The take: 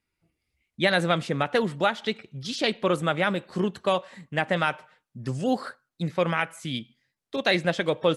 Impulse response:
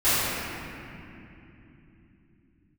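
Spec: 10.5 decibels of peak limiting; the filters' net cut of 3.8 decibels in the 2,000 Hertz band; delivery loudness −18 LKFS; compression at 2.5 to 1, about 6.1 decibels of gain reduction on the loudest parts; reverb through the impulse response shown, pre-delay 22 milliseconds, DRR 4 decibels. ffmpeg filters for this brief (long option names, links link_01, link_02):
-filter_complex "[0:a]equalizer=frequency=2000:width_type=o:gain=-5,acompressor=threshold=-28dB:ratio=2.5,alimiter=level_in=1dB:limit=-24dB:level=0:latency=1,volume=-1dB,asplit=2[link_01][link_02];[1:a]atrim=start_sample=2205,adelay=22[link_03];[link_02][link_03]afir=irnorm=-1:irlink=0,volume=-23dB[link_04];[link_01][link_04]amix=inputs=2:normalize=0,volume=17dB"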